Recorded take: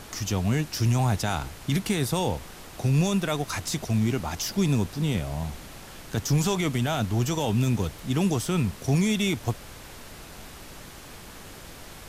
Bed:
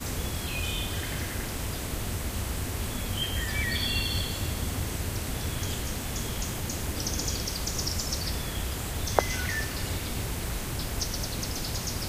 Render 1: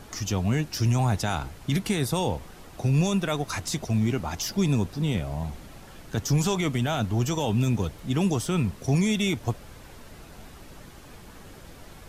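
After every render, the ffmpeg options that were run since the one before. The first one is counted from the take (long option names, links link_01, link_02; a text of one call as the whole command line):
ffmpeg -i in.wav -af "afftdn=noise_reduction=7:noise_floor=-44" out.wav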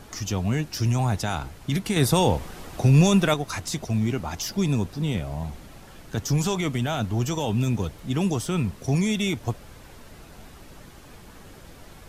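ffmpeg -i in.wav -filter_complex "[0:a]asettb=1/sr,asplit=3[link_01][link_02][link_03];[link_01]atrim=end=1.964[link_04];[link_02]atrim=start=1.96:end=3.34,asetpts=PTS-STARTPTS,afade=type=in:duration=0.004:curve=qsin,afade=type=out:start_time=1.376:duration=0.004:curve=qsin,acontrast=63[link_05];[link_03]atrim=start=3.336[link_06];[link_04][link_05]acrossfade=duration=0.004:curve1=hsin:curve2=qsin[link_07];[link_07][link_06]acrossfade=duration=0.004:curve1=qsin:curve2=hsin" out.wav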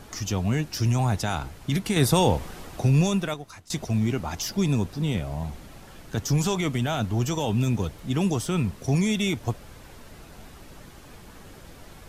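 ffmpeg -i in.wav -filter_complex "[0:a]asplit=2[link_01][link_02];[link_01]atrim=end=3.7,asetpts=PTS-STARTPTS,afade=type=out:start_time=2.51:duration=1.19:silence=0.0891251[link_03];[link_02]atrim=start=3.7,asetpts=PTS-STARTPTS,afade=type=in:duration=0.004:curve=hsin:silence=0.0891251[link_04];[link_03][link_04]concat=n=2:v=0:a=1" out.wav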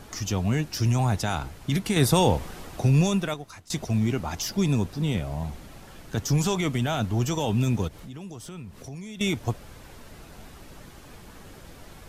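ffmpeg -i in.wav -filter_complex "[0:a]asettb=1/sr,asplit=3[link_01][link_02][link_03];[link_01]atrim=end=7.884[link_04];[link_02]atrim=start=7.88:end=9.21,asetpts=PTS-STARTPTS,afade=type=in:duration=0.004:curve=qsin,afade=type=out:start_time=1.326:duration=0.004:curve=qsin,acompressor=threshold=-39dB:ratio=4:attack=3.2:release=140:knee=1:detection=peak[link_05];[link_03]atrim=start=9.206[link_06];[link_04][link_05]acrossfade=duration=0.004:curve1=hsin:curve2=qsin[link_07];[link_07][link_06]acrossfade=duration=0.004:curve1=qsin:curve2=hsin" out.wav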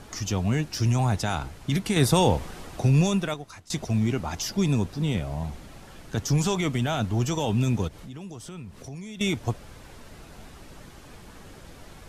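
ffmpeg -i in.wav -af "lowpass=12000" out.wav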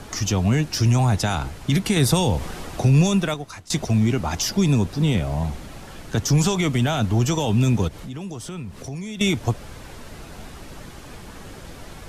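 ffmpeg -i in.wav -filter_complex "[0:a]asplit=2[link_01][link_02];[link_02]alimiter=limit=-18.5dB:level=0:latency=1:release=120,volume=1.5dB[link_03];[link_01][link_03]amix=inputs=2:normalize=0,acrossover=split=230|3000[link_04][link_05][link_06];[link_05]acompressor=threshold=-21dB:ratio=6[link_07];[link_04][link_07][link_06]amix=inputs=3:normalize=0" out.wav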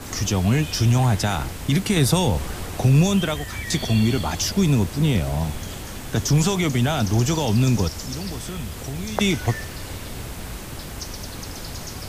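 ffmpeg -i in.wav -i bed.wav -filter_complex "[1:a]volume=-2.5dB[link_01];[0:a][link_01]amix=inputs=2:normalize=0" out.wav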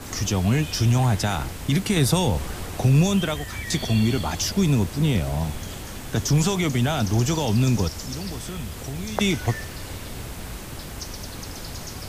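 ffmpeg -i in.wav -af "volume=-1.5dB" out.wav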